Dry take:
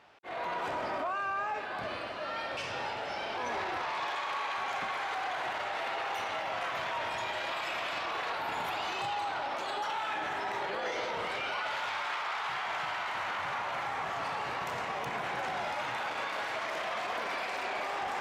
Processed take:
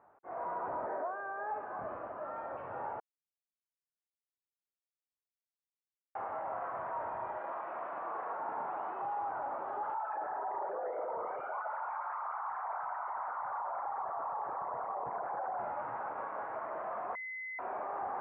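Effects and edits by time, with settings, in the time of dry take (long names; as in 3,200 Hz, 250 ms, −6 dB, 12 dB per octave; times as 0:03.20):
0:00.86–0:01.51: loudspeaker in its box 180–2,400 Hz, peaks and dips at 180 Hz −4 dB, 270 Hz −5 dB, 450 Hz +9 dB, 1,200 Hz −9 dB, 1,700 Hz +8 dB
0:03.00–0:06.15: silence
0:07.37–0:09.20: high-pass filter 180 Hz
0:09.94–0:15.59: spectral envelope exaggerated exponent 2
0:17.15–0:17.59: beep over 2,040 Hz −19 dBFS
whole clip: low-pass filter 1,300 Hz 24 dB per octave; parametric band 890 Hz +5.5 dB 2.5 octaves; level −7 dB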